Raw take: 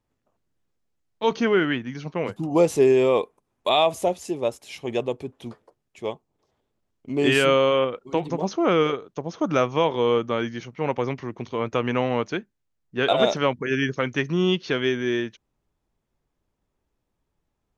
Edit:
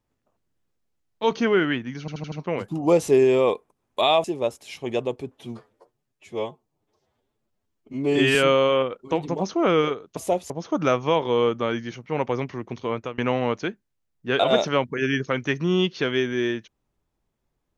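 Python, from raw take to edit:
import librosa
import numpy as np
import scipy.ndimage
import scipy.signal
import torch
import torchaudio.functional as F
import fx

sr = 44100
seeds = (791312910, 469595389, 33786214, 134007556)

y = fx.edit(x, sr, fx.stutter(start_s=2.0, slice_s=0.08, count=5),
    fx.move(start_s=3.92, length_s=0.33, to_s=9.19),
    fx.stretch_span(start_s=5.39, length_s=1.98, factor=1.5),
    fx.fade_out_to(start_s=11.59, length_s=0.28, floor_db=-23.0), tone=tone)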